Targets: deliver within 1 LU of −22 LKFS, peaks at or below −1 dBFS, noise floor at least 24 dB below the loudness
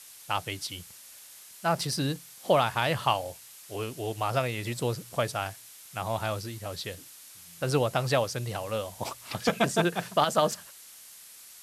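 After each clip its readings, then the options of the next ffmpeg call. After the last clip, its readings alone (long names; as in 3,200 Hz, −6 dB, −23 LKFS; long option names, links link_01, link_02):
background noise floor −50 dBFS; target noise floor −54 dBFS; integrated loudness −29.5 LKFS; sample peak −9.5 dBFS; target loudness −22.0 LKFS
→ -af "afftdn=noise_reduction=6:noise_floor=-50"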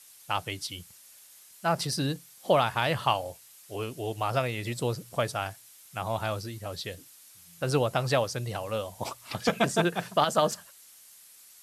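background noise floor −54 dBFS; integrated loudness −29.5 LKFS; sample peak −9.5 dBFS; target loudness −22.0 LKFS
→ -af "volume=7.5dB"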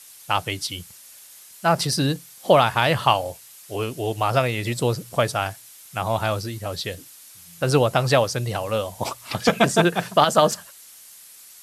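integrated loudness −22.0 LKFS; sample peak −2.0 dBFS; background noise floor −46 dBFS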